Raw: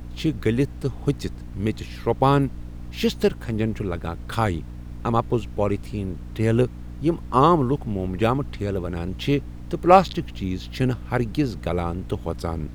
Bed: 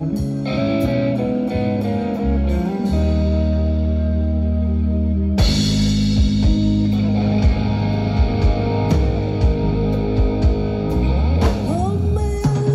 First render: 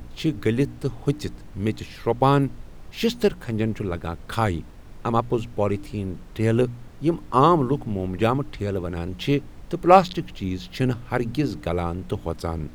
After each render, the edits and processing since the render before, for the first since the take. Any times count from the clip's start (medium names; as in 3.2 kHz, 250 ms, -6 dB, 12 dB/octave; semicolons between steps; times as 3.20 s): de-hum 60 Hz, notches 5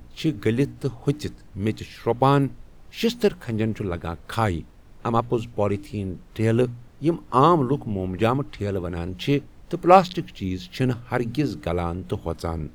noise print and reduce 6 dB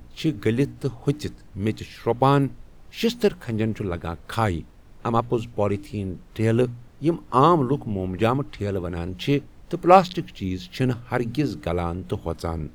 no audible change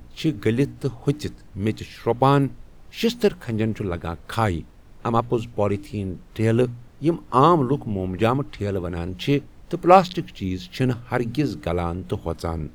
trim +1 dB; peak limiter -1 dBFS, peak gain reduction 1 dB